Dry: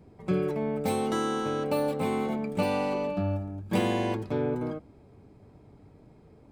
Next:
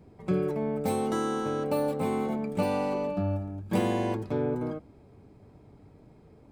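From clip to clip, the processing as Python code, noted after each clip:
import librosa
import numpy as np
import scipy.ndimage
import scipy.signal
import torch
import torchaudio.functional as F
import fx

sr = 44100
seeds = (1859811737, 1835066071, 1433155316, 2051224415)

y = fx.dynamic_eq(x, sr, hz=3000.0, q=0.82, threshold_db=-47.0, ratio=4.0, max_db=-5)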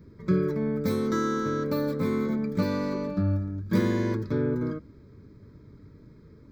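y = fx.fixed_phaser(x, sr, hz=2800.0, stages=6)
y = F.gain(torch.from_numpy(y), 5.0).numpy()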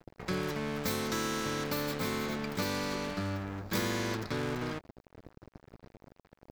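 y = np.sign(x) * np.maximum(np.abs(x) - 10.0 ** (-45.0 / 20.0), 0.0)
y = fx.spectral_comp(y, sr, ratio=2.0)
y = F.gain(torch.from_numpy(y), -6.0).numpy()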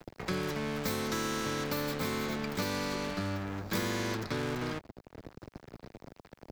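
y = fx.band_squash(x, sr, depth_pct=40)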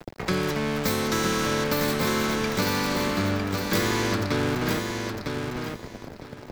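y = fx.quant_dither(x, sr, seeds[0], bits=12, dither='none')
y = fx.echo_feedback(y, sr, ms=954, feedback_pct=20, wet_db=-5)
y = F.gain(torch.from_numpy(y), 8.0).numpy()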